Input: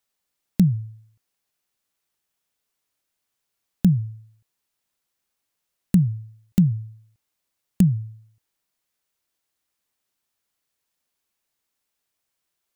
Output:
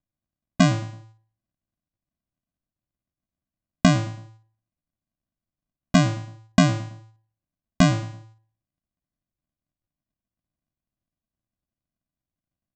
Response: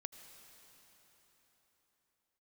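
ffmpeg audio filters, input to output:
-filter_complex "[0:a]aresample=16000,acrusher=samples=36:mix=1:aa=0.000001,aresample=44100,agate=range=-6dB:threshold=-55dB:ratio=16:detection=peak,asplit=2[a][b];[b]adelay=109,lowpass=f=2k:p=1,volume=-18.5dB,asplit=2[c][d];[d]adelay=109,lowpass=f=2k:p=1,volume=0.37,asplit=2[e][f];[f]adelay=109,lowpass=f=2k:p=1,volume=0.37[g];[a][c][e][g]amix=inputs=4:normalize=0"

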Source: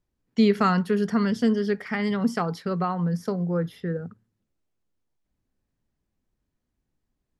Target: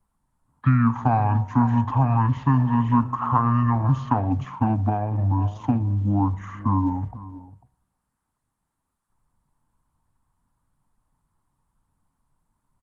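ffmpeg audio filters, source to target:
-filter_complex "[0:a]aecho=1:1:286:0.112,acrossover=split=210|1200|2700[a][b][c][d];[a]acompressor=threshold=-34dB:ratio=4[e];[b]acompressor=threshold=-29dB:ratio=4[f];[c]acompressor=threshold=-44dB:ratio=4[g];[d]acompressor=threshold=-44dB:ratio=4[h];[e][f][g][h]amix=inputs=4:normalize=0,bandreject=f=324.6:t=h:w=4,bandreject=f=649.2:t=h:w=4,bandreject=f=973.8:t=h:w=4,bandreject=f=1.2984k:t=h:w=4,bandreject=f=1.623k:t=h:w=4,bandreject=f=1.9476k:t=h:w=4,bandreject=f=2.2722k:t=h:w=4,bandreject=f=2.5968k:t=h:w=4,bandreject=f=2.9214k:t=h:w=4,bandreject=f=3.246k:t=h:w=4,bandreject=f=3.5706k:t=h:w=4,bandreject=f=3.8952k:t=h:w=4,bandreject=f=4.2198k:t=h:w=4,bandreject=f=4.5444k:t=h:w=4,bandreject=f=4.869k:t=h:w=4,bandreject=f=5.1936k:t=h:w=4,bandreject=f=5.5182k:t=h:w=4,bandreject=f=5.8428k:t=h:w=4,bandreject=f=6.1674k:t=h:w=4,bandreject=f=6.492k:t=h:w=4,bandreject=f=6.8166k:t=h:w=4,bandreject=f=7.1412k:t=h:w=4,asetrate=25442,aresample=44100,firequalizer=gain_entry='entry(190,0);entry(270,4);entry(390,-16);entry(910,12);entry(2500,-11);entry(5600,-15);entry(8300,6)':delay=0.05:min_phase=1,volume=7.5dB" -ar 48000 -c:a libopus -b:a 16k

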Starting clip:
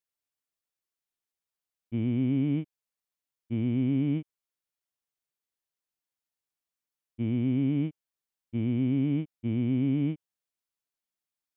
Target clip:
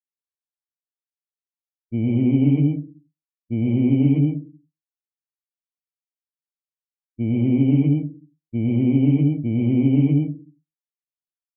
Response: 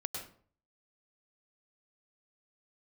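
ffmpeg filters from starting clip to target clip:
-filter_complex "[1:a]atrim=start_sample=2205[a];[0:a][a]afir=irnorm=-1:irlink=0,afftdn=nr=26:nf=-50,volume=8dB"

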